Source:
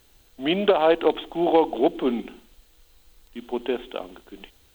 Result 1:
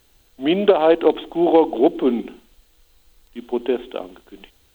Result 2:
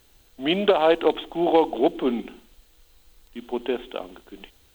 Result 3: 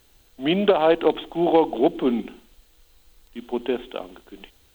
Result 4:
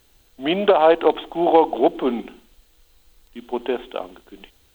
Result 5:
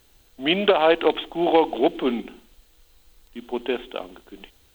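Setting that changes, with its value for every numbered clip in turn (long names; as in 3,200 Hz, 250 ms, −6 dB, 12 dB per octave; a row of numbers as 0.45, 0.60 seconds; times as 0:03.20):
dynamic equaliser, frequency: 340, 7,000, 130, 870, 2,400 Hertz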